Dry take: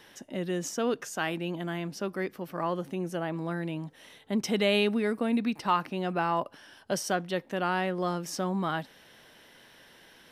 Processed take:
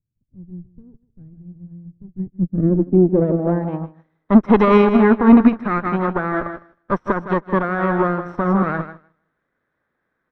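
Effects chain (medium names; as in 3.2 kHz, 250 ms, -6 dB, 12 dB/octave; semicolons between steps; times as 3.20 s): comb filter that takes the minimum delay 0.52 ms; low-pass sweep 110 Hz -> 1.2 kHz, 1.98–3.97 s; on a send: feedback delay 157 ms, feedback 37%, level -9 dB; on the sum: loudness maximiser +20.5 dB; upward expansion 2.5:1, over -29 dBFS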